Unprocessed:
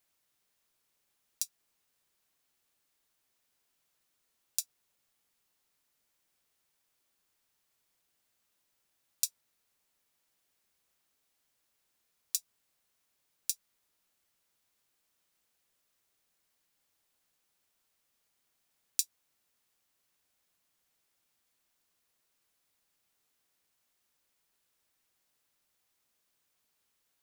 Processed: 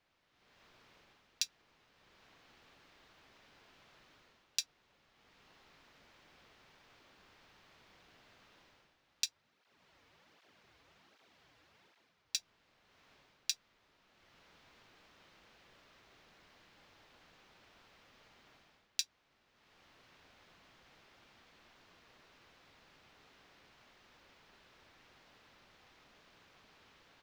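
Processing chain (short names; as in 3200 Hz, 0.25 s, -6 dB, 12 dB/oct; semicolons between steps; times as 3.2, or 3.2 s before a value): AGC gain up to 15 dB; air absorption 240 m; 9.26–12.35 tape flanging out of phase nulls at 1.3 Hz, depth 5.7 ms; gain +8 dB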